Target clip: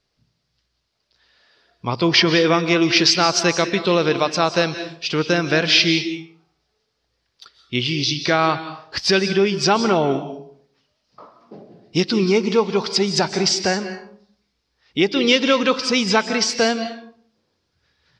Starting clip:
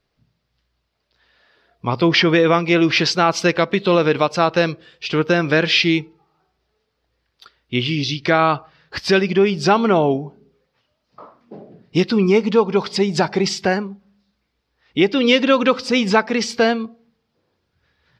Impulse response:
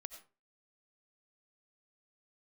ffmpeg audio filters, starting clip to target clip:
-filter_complex "[0:a]asplit=2[link_01][link_02];[link_02]equalizer=frequency=5700:width=0.85:gain=13[link_03];[1:a]atrim=start_sample=2205,asetrate=23373,aresample=44100[link_04];[link_03][link_04]afir=irnorm=-1:irlink=0,volume=3.5dB[link_05];[link_01][link_05]amix=inputs=2:normalize=0,volume=-9.5dB"

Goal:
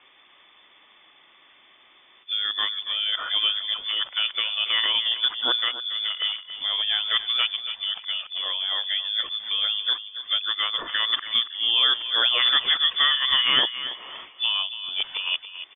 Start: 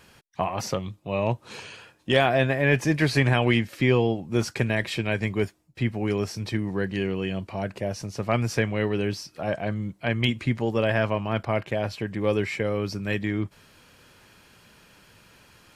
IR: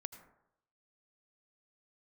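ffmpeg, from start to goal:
-filter_complex "[0:a]areverse,asplit=2[link_01][link_02];[link_02]adelay=280,lowpass=frequency=2800:poles=1,volume=-11dB,asplit=2[link_03][link_04];[link_04]adelay=280,lowpass=frequency=2800:poles=1,volume=0.31,asplit=2[link_05][link_06];[link_06]adelay=280,lowpass=frequency=2800:poles=1,volume=0.31[link_07];[link_01][link_03][link_05][link_07]amix=inputs=4:normalize=0,lowpass=frequency=3100:width_type=q:width=0.5098,lowpass=frequency=3100:width_type=q:width=0.6013,lowpass=frequency=3100:width_type=q:width=0.9,lowpass=frequency=3100:width_type=q:width=2.563,afreqshift=-3600"

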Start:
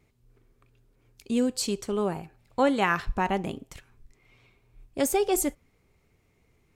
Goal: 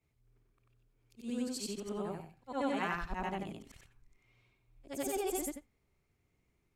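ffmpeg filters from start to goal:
ffmpeg -i in.wav -af "afftfilt=real='re':imag='-im':win_size=8192:overlap=0.75,equalizer=frequency=480:width_type=o:width=0.27:gain=-4,volume=-6dB" out.wav

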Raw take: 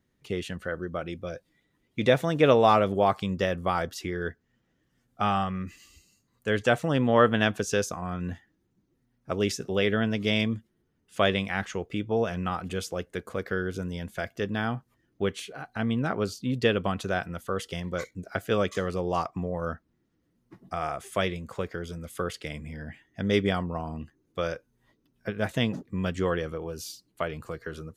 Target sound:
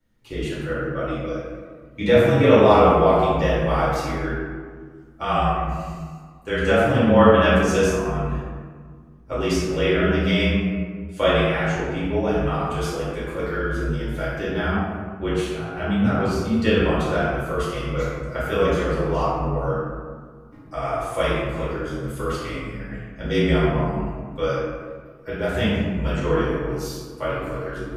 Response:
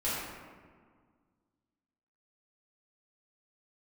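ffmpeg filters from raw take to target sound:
-filter_complex "[0:a]afreqshift=-31[link_01];[1:a]atrim=start_sample=2205[link_02];[link_01][link_02]afir=irnorm=-1:irlink=0,volume=-1.5dB"

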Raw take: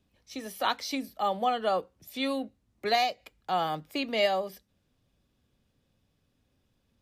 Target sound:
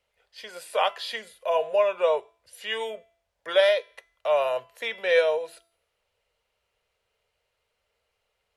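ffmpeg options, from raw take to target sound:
ffmpeg -i in.wav -filter_complex "[0:a]lowshelf=frequency=470:width_type=q:width=3:gain=-10.5,acrossover=split=3500[link_01][link_02];[link_01]crystalizer=i=3.5:c=0[link_03];[link_03][link_02]amix=inputs=2:normalize=0,equalizer=frequency=200:width=1.1:gain=-8.5,asetrate=36162,aresample=44100,bandreject=frequency=336.1:width_type=h:width=4,bandreject=frequency=672.2:width_type=h:width=4,bandreject=frequency=1008.3:width_type=h:width=4,bandreject=frequency=1344.4:width_type=h:width=4,bandreject=frequency=1680.5:width_type=h:width=4,bandreject=frequency=2016.6:width_type=h:width=4,bandreject=frequency=2352.7:width_type=h:width=4,bandreject=frequency=2688.8:width_type=h:width=4,bandreject=frequency=3024.9:width_type=h:width=4,bandreject=frequency=3361:width_type=h:width=4,bandreject=frequency=3697.1:width_type=h:width=4,bandreject=frequency=4033.2:width_type=h:width=4,bandreject=frequency=4369.3:width_type=h:width=4,bandreject=frequency=4705.4:width_type=h:width=4,bandreject=frequency=5041.5:width_type=h:width=4,bandreject=frequency=5377.6:width_type=h:width=4,bandreject=frequency=5713.7:width_type=h:width=4,bandreject=frequency=6049.8:width_type=h:width=4,bandreject=frequency=6385.9:width_type=h:width=4,bandreject=frequency=6722:width_type=h:width=4,bandreject=frequency=7058.1:width_type=h:width=4,bandreject=frequency=7394.2:width_type=h:width=4,bandreject=frequency=7730.3:width_type=h:width=4,bandreject=frequency=8066.4:width_type=h:width=4,bandreject=frequency=8402.5:width_type=h:width=4,bandreject=frequency=8738.6:width_type=h:width=4,bandreject=frequency=9074.7:width_type=h:width=4,bandreject=frequency=9410.8:width_type=h:width=4,bandreject=frequency=9746.9:width_type=h:width=4,bandreject=frequency=10083:width_type=h:width=4,bandreject=frequency=10419.1:width_type=h:width=4,bandreject=frequency=10755.2:width_type=h:width=4,bandreject=frequency=11091.3:width_type=h:width=4,bandreject=frequency=11427.4:width_type=h:width=4,bandreject=frequency=11763.5:width_type=h:width=4,bandreject=frequency=12099.6:width_type=h:width=4" out.wav

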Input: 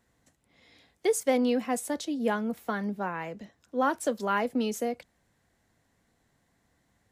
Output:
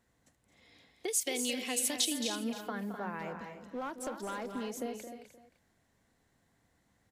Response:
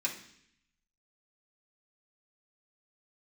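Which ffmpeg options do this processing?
-filter_complex "[0:a]acompressor=threshold=-32dB:ratio=6,asettb=1/sr,asplit=3[link_01][link_02][link_03];[link_01]atrim=end=1.084[link_04];[link_02]atrim=start=1.08:end=2.28,asetpts=PTS-STARTPTS,afade=type=in:duration=0.004:curve=qsin,afade=type=out:start_time=1.196:duration=0.004:curve=qsin,highshelf=frequency=1900:width_type=q:width=1.5:gain=13.5[link_05];[link_03]atrim=start=2.276[link_06];[link_04][link_05]acrossfade=duration=0.004:curve1=hsin:curve2=qsin[link_07];[link_07][link_06]acrossfade=duration=0.004:curve1=qsin:curve2=hsin,asplit=2[link_08][link_09];[link_09]aecho=0:1:305:0.237[link_10];[link_08][link_10]amix=inputs=2:normalize=0,asettb=1/sr,asplit=3[link_11][link_12][link_13];[link_11]atrim=end=3.194[link_14];[link_12]atrim=start=3.19:end=4.73,asetpts=PTS-STARTPTS,afade=type=in:duration=0.004:curve=qsin,afade=type=out:start_time=1.536:duration=0.004:curve=qsin,asoftclip=type=hard:threshold=-31dB[link_15];[link_13]atrim=start=4.726[link_16];[link_14][link_15]acrossfade=duration=0.004:curve1=hsin:curve2=qsin[link_17];[link_17][link_16]acrossfade=duration=0.004:curve1=qsin:curve2=hsin,asplit=2[link_18][link_19];[link_19]aecho=0:1:218.7|253.6:0.316|0.355[link_20];[link_18][link_20]amix=inputs=2:normalize=0,volume=-3dB"

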